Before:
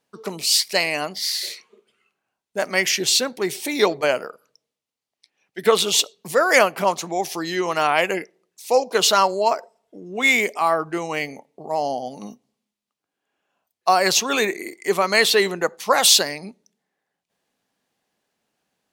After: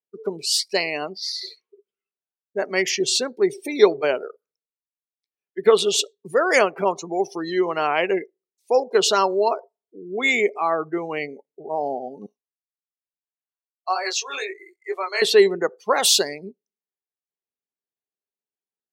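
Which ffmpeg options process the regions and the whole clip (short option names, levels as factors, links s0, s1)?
-filter_complex "[0:a]asettb=1/sr,asplit=3[s0][s1][s2];[s0]atrim=end=12.264[s3];[s1]atrim=start=12.26:end=15.22,asetpts=PTS-STARTPTS,afade=t=in:d=0.004:c=qsin,afade=t=out:st=2.956:d=0.004:c=qsin,highpass=740,flanger=delay=18.5:depth=3.9:speed=2.2[s4];[s2]atrim=start=15.216[s5];[s3][s4]acrossfade=d=0.004:c1=hsin:c2=qsin[s6];[s6][s5]acrossfade=d=0.004:c1=qsin:c2=hsin,equalizer=f=400:t=o:w=0.36:g=10,afftdn=nr=26:nf=-29,volume=0.708"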